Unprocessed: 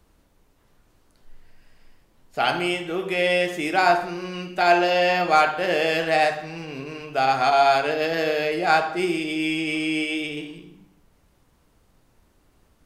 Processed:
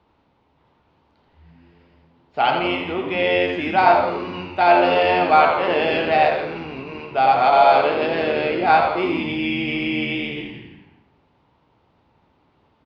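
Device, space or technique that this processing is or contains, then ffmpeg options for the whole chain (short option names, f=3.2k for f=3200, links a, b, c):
frequency-shifting delay pedal into a guitar cabinet: -filter_complex "[0:a]asplit=9[a][b][c][d][e][f][g][h][i];[b]adelay=84,afreqshift=-89,volume=-6.5dB[j];[c]adelay=168,afreqshift=-178,volume=-11.1dB[k];[d]adelay=252,afreqshift=-267,volume=-15.7dB[l];[e]adelay=336,afreqshift=-356,volume=-20.2dB[m];[f]adelay=420,afreqshift=-445,volume=-24.8dB[n];[g]adelay=504,afreqshift=-534,volume=-29.4dB[o];[h]adelay=588,afreqshift=-623,volume=-34dB[p];[i]adelay=672,afreqshift=-712,volume=-38.6dB[q];[a][j][k][l][m][n][o][p][q]amix=inputs=9:normalize=0,highpass=95,equalizer=f=180:t=q:w=4:g=-3,equalizer=f=890:t=q:w=4:g=8,equalizer=f=1.7k:t=q:w=4:g=-4,lowpass=f=3.8k:w=0.5412,lowpass=f=3.8k:w=1.3066,volume=1dB"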